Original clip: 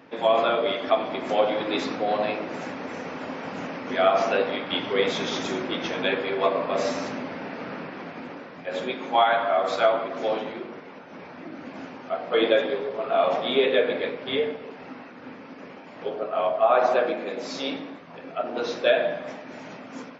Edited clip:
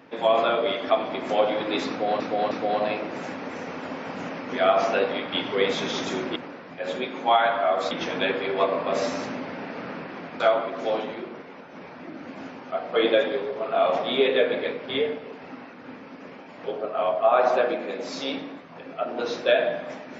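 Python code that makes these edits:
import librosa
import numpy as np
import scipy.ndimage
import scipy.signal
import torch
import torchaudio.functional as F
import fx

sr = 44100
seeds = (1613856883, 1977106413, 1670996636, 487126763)

y = fx.edit(x, sr, fx.repeat(start_s=1.89, length_s=0.31, count=3),
    fx.move(start_s=8.23, length_s=1.55, to_s=5.74), tone=tone)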